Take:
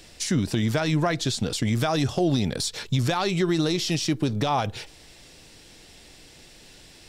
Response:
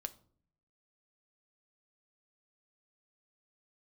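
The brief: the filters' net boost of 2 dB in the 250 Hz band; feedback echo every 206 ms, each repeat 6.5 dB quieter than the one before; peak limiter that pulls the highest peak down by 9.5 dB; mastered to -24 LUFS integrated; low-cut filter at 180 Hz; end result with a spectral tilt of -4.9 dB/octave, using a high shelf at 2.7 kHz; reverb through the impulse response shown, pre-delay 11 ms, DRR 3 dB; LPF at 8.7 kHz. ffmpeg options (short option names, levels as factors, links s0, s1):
-filter_complex "[0:a]highpass=180,lowpass=8700,equalizer=f=250:t=o:g=4.5,highshelf=f=2700:g=-4.5,alimiter=limit=0.1:level=0:latency=1,aecho=1:1:206|412|618|824|1030|1236:0.473|0.222|0.105|0.0491|0.0231|0.0109,asplit=2[s0][s1];[1:a]atrim=start_sample=2205,adelay=11[s2];[s1][s2]afir=irnorm=-1:irlink=0,volume=0.944[s3];[s0][s3]amix=inputs=2:normalize=0,volume=1.41"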